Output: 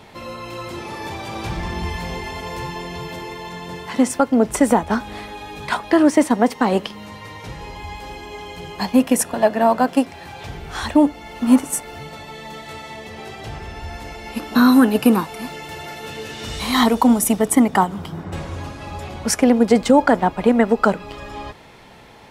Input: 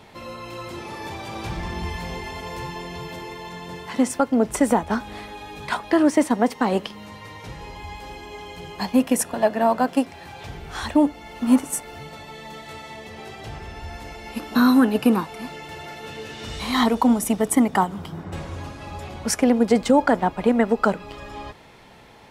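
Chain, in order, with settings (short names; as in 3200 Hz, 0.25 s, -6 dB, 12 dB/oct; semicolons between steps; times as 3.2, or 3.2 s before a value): 14.72–17.39 high shelf 7900 Hz +7 dB; gain +3.5 dB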